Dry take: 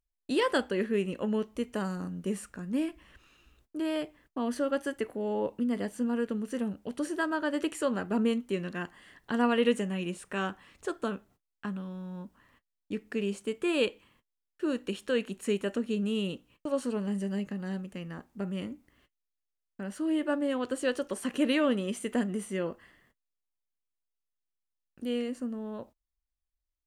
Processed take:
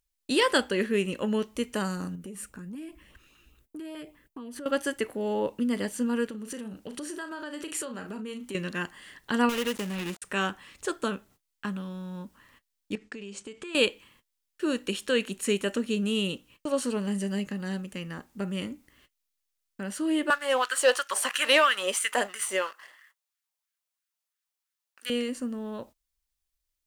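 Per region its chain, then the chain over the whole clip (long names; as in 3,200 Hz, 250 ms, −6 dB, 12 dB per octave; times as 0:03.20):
0:02.15–0:04.66: parametric band 4,900 Hz −8.5 dB 2.2 octaves + auto-filter notch saw up 5 Hz 480–2,000 Hz + downward compressor 10 to 1, threshold −39 dBFS
0:06.26–0:08.55: double-tracking delay 37 ms −10 dB + downward compressor, threshold −37 dBFS
0:09.49–0:10.22: gap after every zero crossing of 0.27 ms + downward compressor 2 to 1, threshold −33 dBFS
0:12.95–0:13.75: low-pass filter 7,800 Hz 24 dB per octave + downward expander −55 dBFS + downward compressor 16 to 1, threshold −39 dBFS
0:20.30–0:25.10: auto-filter high-pass sine 3 Hz 610–1,600 Hz + leveller curve on the samples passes 1
whole clip: high-shelf EQ 2,000 Hz +9 dB; notch filter 700 Hz, Q 15; level +2 dB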